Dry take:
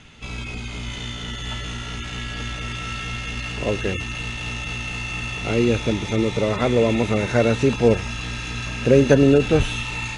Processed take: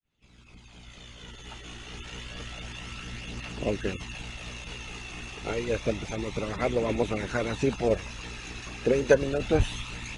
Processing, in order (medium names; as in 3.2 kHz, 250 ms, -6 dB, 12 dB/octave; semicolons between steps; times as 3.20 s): fade-in on the opening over 2.16 s; harmonic-percussive split harmonic -15 dB; phaser 0.29 Hz, delay 2.8 ms, feedback 33%; trim -3 dB